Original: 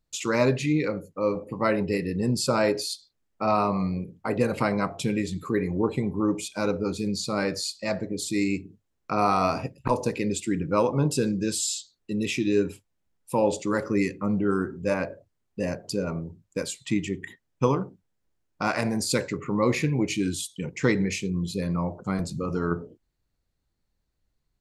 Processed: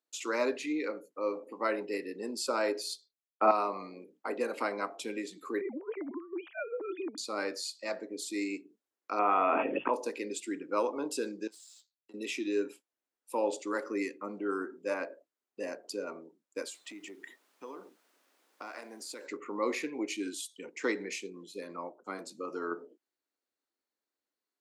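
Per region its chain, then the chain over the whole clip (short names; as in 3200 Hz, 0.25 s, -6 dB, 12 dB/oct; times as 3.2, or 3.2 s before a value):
2.79–3.51 notches 60/120/180/240/300/360/420/480/540/600 Hz + three-band expander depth 100%
5.61–7.18 sine-wave speech + LPF 2200 Hz + negative-ratio compressor -29 dBFS, ratio -0.5
9.19–9.94 brick-wall FIR low-pass 3500 Hz + fast leveller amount 100%
11.47–12.14 power-law curve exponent 1.4 + compressor 8:1, threshold -43 dBFS
16.68–19.25 compressor, threshold -32 dBFS + added noise pink -62 dBFS
21.43–22.26 notch 4700 Hz, Q 15 + upward expander, over -41 dBFS
whole clip: steep high-pass 270 Hz 36 dB/oct; bell 1400 Hz +2.5 dB; gain -7.5 dB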